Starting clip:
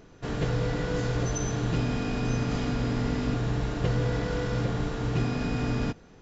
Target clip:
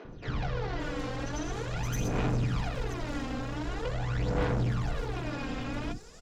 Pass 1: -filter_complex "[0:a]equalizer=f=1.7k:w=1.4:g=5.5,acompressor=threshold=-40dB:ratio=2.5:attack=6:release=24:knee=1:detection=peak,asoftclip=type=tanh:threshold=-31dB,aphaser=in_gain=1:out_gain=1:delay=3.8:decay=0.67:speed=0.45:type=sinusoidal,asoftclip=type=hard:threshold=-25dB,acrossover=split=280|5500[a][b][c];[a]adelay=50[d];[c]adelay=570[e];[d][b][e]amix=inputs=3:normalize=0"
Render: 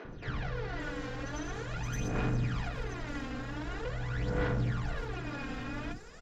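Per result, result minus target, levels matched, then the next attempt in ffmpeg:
compressor: peak gain reduction +12.5 dB; 2000 Hz band +3.0 dB
-filter_complex "[0:a]equalizer=f=1.7k:w=1.4:g=5.5,asoftclip=type=tanh:threshold=-31dB,aphaser=in_gain=1:out_gain=1:delay=3.8:decay=0.67:speed=0.45:type=sinusoidal,asoftclip=type=hard:threshold=-25dB,acrossover=split=280|5500[a][b][c];[a]adelay=50[d];[c]adelay=570[e];[d][b][e]amix=inputs=3:normalize=0"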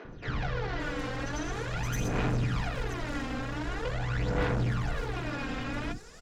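2000 Hz band +3.5 dB
-filter_complex "[0:a]asoftclip=type=tanh:threshold=-31dB,aphaser=in_gain=1:out_gain=1:delay=3.8:decay=0.67:speed=0.45:type=sinusoidal,asoftclip=type=hard:threshold=-25dB,acrossover=split=280|5500[a][b][c];[a]adelay=50[d];[c]adelay=570[e];[d][b][e]amix=inputs=3:normalize=0"

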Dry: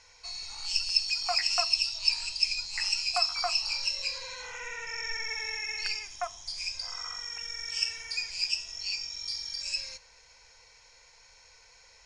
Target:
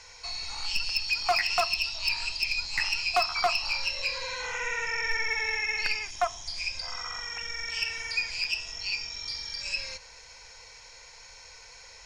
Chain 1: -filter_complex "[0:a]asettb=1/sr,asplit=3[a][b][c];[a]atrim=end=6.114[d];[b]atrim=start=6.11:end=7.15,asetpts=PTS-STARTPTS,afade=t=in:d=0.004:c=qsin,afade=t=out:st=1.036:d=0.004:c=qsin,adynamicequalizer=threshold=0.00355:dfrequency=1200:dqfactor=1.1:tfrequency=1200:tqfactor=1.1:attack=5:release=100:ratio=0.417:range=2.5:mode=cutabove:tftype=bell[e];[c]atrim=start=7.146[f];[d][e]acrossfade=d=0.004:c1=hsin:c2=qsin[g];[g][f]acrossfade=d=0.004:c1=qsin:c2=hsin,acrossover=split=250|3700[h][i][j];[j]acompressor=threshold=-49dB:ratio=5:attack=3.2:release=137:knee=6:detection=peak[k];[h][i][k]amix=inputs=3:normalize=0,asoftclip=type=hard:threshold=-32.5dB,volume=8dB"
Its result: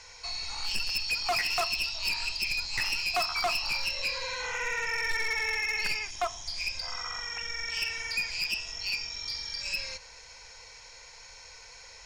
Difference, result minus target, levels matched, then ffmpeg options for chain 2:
hard clip: distortion +8 dB
-filter_complex "[0:a]asettb=1/sr,asplit=3[a][b][c];[a]atrim=end=6.114[d];[b]atrim=start=6.11:end=7.15,asetpts=PTS-STARTPTS,afade=t=in:d=0.004:c=qsin,afade=t=out:st=1.036:d=0.004:c=qsin,adynamicequalizer=threshold=0.00355:dfrequency=1200:dqfactor=1.1:tfrequency=1200:tqfactor=1.1:attack=5:release=100:ratio=0.417:range=2.5:mode=cutabove:tftype=bell[e];[c]atrim=start=7.146[f];[d][e]acrossfade=d=0.004:c1=hsin:c2=qsin[g];[g][f]acrossfade=d=0.004:c1=qsin:c2=hsin,acrossover=split=250|3700[h][i][j];[j]acompressor=threshold=-49dB:ratio=5:attack=3.2:release=137:knee=6:detection=peak[k];[h][i][k]amix=inputs=3:normalize=0,asoftclip=type=hard:threshold=-26.5dB,volume=8dB"

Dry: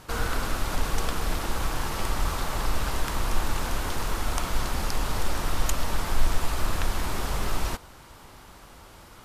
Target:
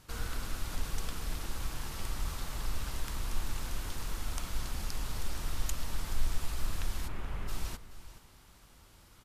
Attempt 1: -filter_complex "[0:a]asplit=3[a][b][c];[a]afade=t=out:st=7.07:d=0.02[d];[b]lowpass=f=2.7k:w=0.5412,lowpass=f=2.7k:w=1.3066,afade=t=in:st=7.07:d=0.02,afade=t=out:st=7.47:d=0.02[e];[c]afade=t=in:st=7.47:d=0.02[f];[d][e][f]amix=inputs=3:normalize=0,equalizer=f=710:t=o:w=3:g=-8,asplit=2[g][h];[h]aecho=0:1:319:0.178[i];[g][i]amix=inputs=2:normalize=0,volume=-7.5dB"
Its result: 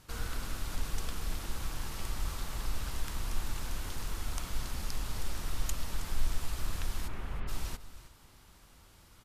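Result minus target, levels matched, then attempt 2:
echo 0.109 s early
-filter_complex "[0:a]asplit=3[a][b][c];[a]afade=t=out:st=7.07:d=0.02[d];[b]lowpass=f=2.7k:w=0.5412,lowpass=f=2.7k:w=1.3066,afade=t=in:st=7.07:d=0.02,afade=t=out:st=7.47:d=0.02[e];[c]afade=t=in:st=7.47:d=0.02[f];[d][e][f]amix=inputs=3:normalize=0,equalizer=f=710:t=o:w=3:g=-8,asplit=2[g][h];[h]aecho=0:1:428:0.178[i];[g][i]amix=inputs=2:normalize=0,volume=-7.5dB"

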